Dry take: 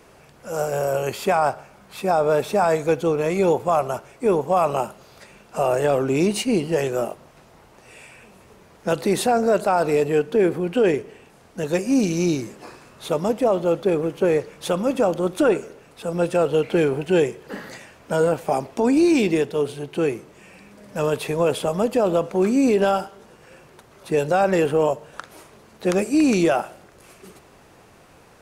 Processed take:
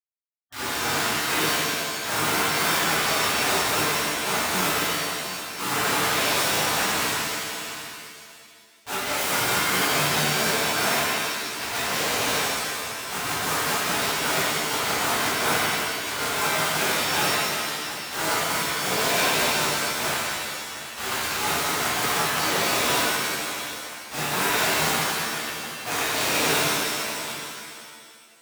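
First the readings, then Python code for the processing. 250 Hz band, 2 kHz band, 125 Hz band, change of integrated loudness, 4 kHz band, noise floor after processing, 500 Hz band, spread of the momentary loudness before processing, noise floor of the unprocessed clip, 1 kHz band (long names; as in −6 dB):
−11.0 dB, +9.0 dB, −6.0 dB, −2.0 dB, +12.5 dB, −47 dBFS, −10.5 dB, 11 LU, −51 dBFS, 0.0 dB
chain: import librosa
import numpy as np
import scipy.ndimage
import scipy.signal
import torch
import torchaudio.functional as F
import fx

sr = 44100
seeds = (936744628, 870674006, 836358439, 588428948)

p1 = fx.delta_hold(x, sr, step_db=-22.0)
p2 = scipy.signal.sosfilt(scipy.signal.butter(2, 120.0, 'highpass', fs=sr, output='sos'), p1)
p3 = fx.spec_gate(p2, sr, threshold_db=-15, keep='weak')
p4 = p3 + fx.echo_single(p3, sr, ms=723, db=-13.5, dry=0)
p5 = fx.rev_shimmer(p4, sr, seeds[0], rt60_s=1.8, semitones=7, shimmer_db=-2, drr_db=-11.0)
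y = p5 * 10.0 ** (-6.0 / 20.0)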